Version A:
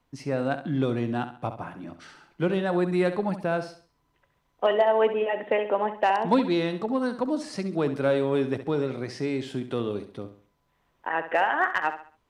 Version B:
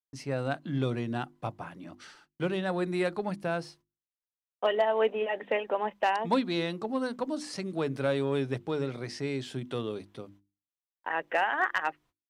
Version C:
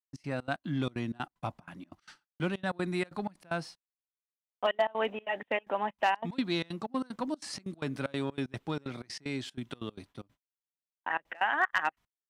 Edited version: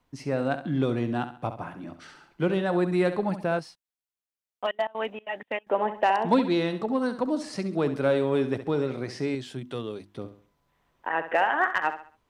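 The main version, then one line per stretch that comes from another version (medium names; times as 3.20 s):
A
3.59–5.71 s: from C
9.35–10.16 s: from B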